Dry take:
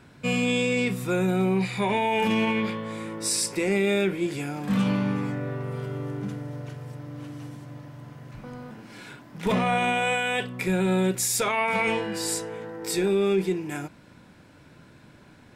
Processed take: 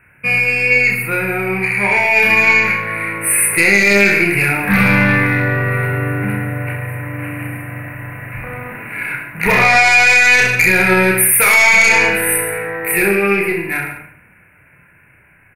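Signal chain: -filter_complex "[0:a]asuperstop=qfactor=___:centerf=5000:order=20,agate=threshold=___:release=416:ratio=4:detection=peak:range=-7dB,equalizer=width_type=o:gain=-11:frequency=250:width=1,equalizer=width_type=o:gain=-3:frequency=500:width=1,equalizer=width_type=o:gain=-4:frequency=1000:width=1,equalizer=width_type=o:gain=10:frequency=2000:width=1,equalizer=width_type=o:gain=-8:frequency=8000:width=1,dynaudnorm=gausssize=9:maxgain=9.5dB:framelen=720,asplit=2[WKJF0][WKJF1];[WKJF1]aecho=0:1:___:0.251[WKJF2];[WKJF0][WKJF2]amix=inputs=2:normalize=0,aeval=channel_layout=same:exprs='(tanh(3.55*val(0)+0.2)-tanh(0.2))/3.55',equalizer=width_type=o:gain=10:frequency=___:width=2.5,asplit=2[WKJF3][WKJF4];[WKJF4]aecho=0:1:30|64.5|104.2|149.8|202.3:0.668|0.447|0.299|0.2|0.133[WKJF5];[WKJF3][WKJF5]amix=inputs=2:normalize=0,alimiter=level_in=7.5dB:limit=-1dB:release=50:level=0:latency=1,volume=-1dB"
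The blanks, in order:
0.83, -43dB, 133, 13000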